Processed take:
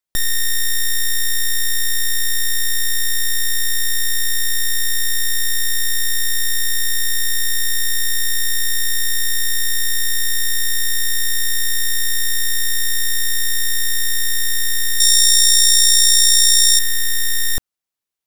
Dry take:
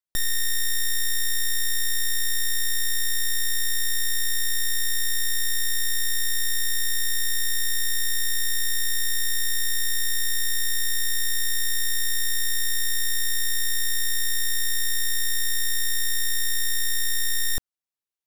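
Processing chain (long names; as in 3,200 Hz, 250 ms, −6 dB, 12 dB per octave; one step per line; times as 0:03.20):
0:15.00–0:16.79: flat-topped bell 6,000 Hz +12 dB
level +6 dB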